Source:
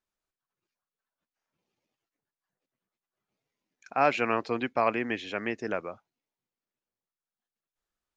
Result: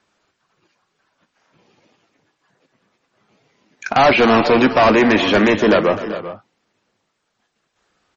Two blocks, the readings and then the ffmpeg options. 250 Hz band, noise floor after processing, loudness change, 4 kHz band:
+19.0 dB, -72 dBFS, +15.0 dB, +20.5 dB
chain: -filter_complex "[0:a]equalizer=f=100:w=0.34:g=14,acrossover=split=290|1300[s0][s1][s2];[s2]alimiter=level_in=1.33:limit=0.0631:level=0:latency=1:release=469,volume=0.75[s3];[s0][s1][s3]amix=inputs=3:normalize=0,asplit=2[s4][s5];[s5]highpass=f=720:p=1,volume=20,asoftclip=type=tanh:threshold=0.355[s6];[s4][s6]amix=inputs=2:normalize=0,lowpass=f=3400:p=1,volume=0.501,asoftclip=type=tanh:threshold=0.211,asplit=2[s7][s8];[s8]adelay=19,volume=0.224[s9];[s7][s9]amix=inputs=2:normalize=0,aecho=1:1:57|255|385|414:0.133|0.178|0.168|0.168,aresample=22050,aresample=44100,volume=2.24" -ar 48000 -c:a libmp3lame -b:a 32k

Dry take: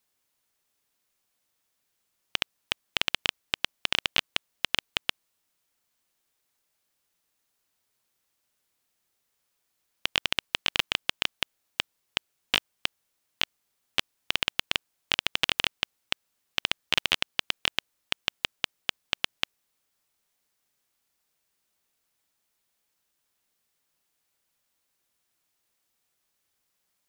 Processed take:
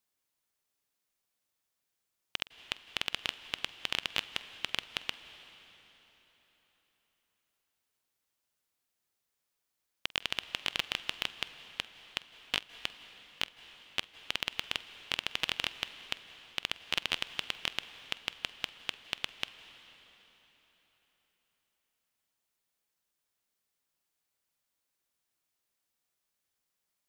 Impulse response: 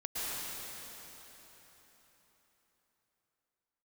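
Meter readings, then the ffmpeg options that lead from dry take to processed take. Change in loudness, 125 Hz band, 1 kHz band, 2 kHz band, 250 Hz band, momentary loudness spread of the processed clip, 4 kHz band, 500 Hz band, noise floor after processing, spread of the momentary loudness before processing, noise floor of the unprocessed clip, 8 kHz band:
-7.0 dB, -7.0 dB, -6.5 dB, -7.0 dB, -6.5 dB, 8 LU, -7.0 dB, -7.0 dB, -84 dBFS, 8 LU, -78 dBFS, -7.0 dB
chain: -filter_complex "[0:a]asplit=2[s0][s1];[1:a]atrim=start_sample=2205,adelay=47[s2];[s1][s2]afir=irnorm=-1:irlink=0,volume=0.126[s3];[s0][s3]amix=inputs=2:normalize=0,volume=0.447"

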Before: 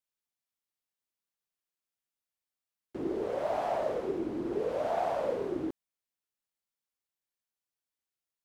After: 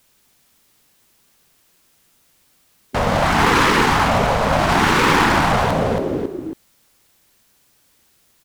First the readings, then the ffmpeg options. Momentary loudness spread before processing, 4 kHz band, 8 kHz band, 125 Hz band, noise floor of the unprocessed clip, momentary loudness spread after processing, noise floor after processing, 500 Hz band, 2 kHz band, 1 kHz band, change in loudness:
7 LU, +30.5 dB, no reading, +27.5 dB, under -85 dBFS, 11 LU, -59 dBFS, +11.0 dB, +30.5 dB, +20.0 dB, +16.5 dB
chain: -filter_complex "[0:a]aecho=1:1:275|550|825:0.355|0.106|0.0319,acrossover=split=350[s0][s1];[s0]acontrast=38[s2];[s2][s1]amix=inputs=2:normalize=0,apsyclip=59.6,afftfilt=real='re*lt(hypot(re,im),1.78)':imag='im*lt(hypot(re,im),1.78)':win_size=1024:overlap=0.75,volume=0.668"

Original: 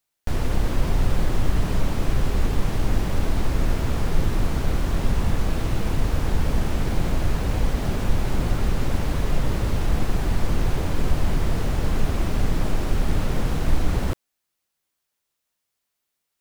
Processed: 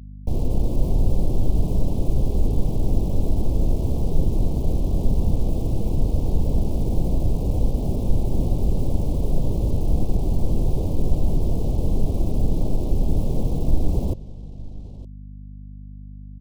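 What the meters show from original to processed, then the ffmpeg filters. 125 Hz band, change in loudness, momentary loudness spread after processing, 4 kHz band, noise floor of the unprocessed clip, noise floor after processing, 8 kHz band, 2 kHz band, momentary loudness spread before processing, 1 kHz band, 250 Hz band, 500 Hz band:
+1.5 dB, +1.0 dB, 15 LU, -11.0 dB, -80 dBFS, -38 dBFS, -7.5 dB, under -20 dB, 1 LU, -7.5 dB, +1.5 dB, +0.5 dB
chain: -filter_complex "[0:a]anlmdn=10,aecho=1:1:913:0.112,aeval=exprs='val(0)+0.0126*(sin(2*PI*50*n/s)+sin(2*PI*2*50*n/s)/2+sin(2*PI*3*50*n/s)/3+sin(2*PI*4*50*n/s)/4+sin(2*PI*5*50*n/s)/5)':c=same,acrossover=split=140|2500[s0][s1][s2];[s2]aeval=exprs='(mod(178*val(0)+1,2)-1)/178':c=same[s3];[s0][s1][s3]amix=inputs=3:normalize=0,asuperstop=centerf=1600:order=4:qfactor=0.5,volume=1.19"

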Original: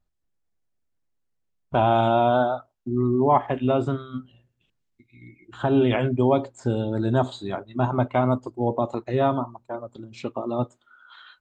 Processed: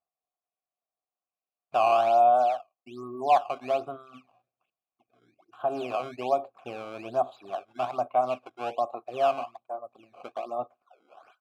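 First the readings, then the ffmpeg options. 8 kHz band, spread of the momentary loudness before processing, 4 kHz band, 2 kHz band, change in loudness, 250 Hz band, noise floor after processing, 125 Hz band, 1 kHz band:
no reading, 14 LU, -5.5 dB, -6.0 dB, -3.5 dB, -18.5 dB, under -85 dBFS, -26.0 dB, 0.0 dB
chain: -filter_complex "[0:a]acrusher=samples=14:mix=1:aa=0.000001:lfo=1:lforange=22.4:lforate=1.2,asplit=3[s0][s1][s2];[s0]bandpass=f=730:t=q:w=8,volume=1[s3];[s1]bandpass=f=1090:t=q:w=8,volume=0.501[s4];[s2]bandpass=f=2440:t=q:w=8,volume=0.355[s5];[s3][s4][s5]amix=inputs=3:normalize=0,volume=1.58"

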